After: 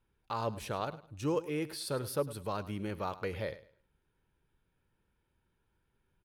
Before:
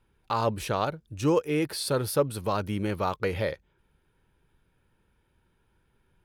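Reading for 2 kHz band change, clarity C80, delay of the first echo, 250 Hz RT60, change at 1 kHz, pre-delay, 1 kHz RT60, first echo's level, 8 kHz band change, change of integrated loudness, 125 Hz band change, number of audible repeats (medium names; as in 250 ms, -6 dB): -8.5 dB, no reverb, 104 ms, no reverb, -8.5 dB, no reverb, no reverb, -16.5 dB, -8.5 dB, -8.5 dB, -8.5 dB, 2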